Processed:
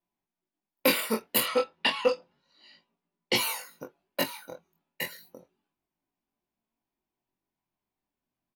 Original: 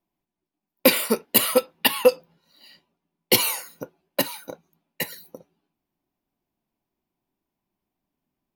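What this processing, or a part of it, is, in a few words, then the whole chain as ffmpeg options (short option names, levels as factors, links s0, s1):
double-tracked vocal: -filter_complex "[0:a]asettb=1/sr,asplit=3[s0][s1][s2];[s0]atrim=end=1.434[s3];[s1]atrim=start=1.43:end=3.36,asetpts=PTS-STARTPTS,afade=t=in:d=0.004:c=qsin,afade=t=out:st=1.926:d=0.004:c=qsin,lowpass=f=7000:w=0.5412,lowpass=f=7000:w=1.3066[s4];[s2]atrim=start=3.356[s5];[s3][s4]acrossfade=d=0.004:c1=hsin:c2=qsin[s6];[s6][s5]acrossfade=d=0.004:c1=qsin:c2=hsin,equalizer=f=1600:w=0.51:g=4.5,asplit=2[s7][s8];[s8]adelay=22,volume=0.398[s9];[s7][s9]amix=inputs=2:normalize=0,flanger=delay=17:depth=7.3:speed=0.31,volume=0.562"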